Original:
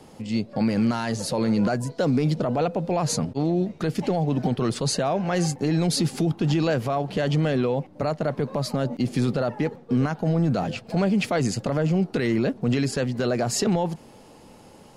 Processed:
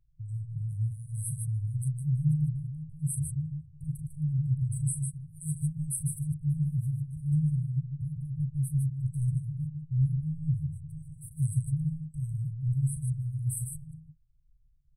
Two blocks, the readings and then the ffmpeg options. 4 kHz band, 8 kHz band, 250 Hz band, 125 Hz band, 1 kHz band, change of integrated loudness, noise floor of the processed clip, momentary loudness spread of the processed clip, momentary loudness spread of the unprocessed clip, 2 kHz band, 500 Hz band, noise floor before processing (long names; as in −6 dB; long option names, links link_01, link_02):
below −40 dB, −5.0 dB, below −10 dB, −1.5 dB, below −40 dB, −7.0 dB, −62 dBFS, 10 LU, 4 LU, below −40 dB, below −40 dB, −49 dBFS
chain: -af "aecho=1:1:37.9|151.6:0.355|0.562,anlmdn=3.98,afftfilt=real='re*(1-between(b*sr/4096,160,8000))':imag='im*(1-between(b*sr/4096,160,8000))':win_size=4096:overlap=0.75"